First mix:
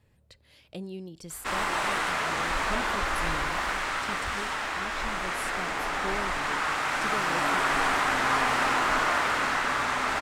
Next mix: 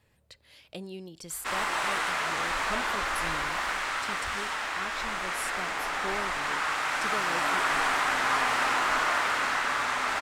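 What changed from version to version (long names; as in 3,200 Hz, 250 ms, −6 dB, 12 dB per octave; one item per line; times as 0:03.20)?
speech +3.5 dB
master: add low-shelf EQ 430 Hz −8.5 dB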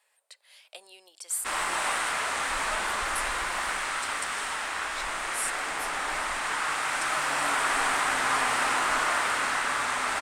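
speech: add high-pass filter 630 Hz 24 dB per octave
master: add parametric band 8,900 Hz +11 dB 0.44 octaves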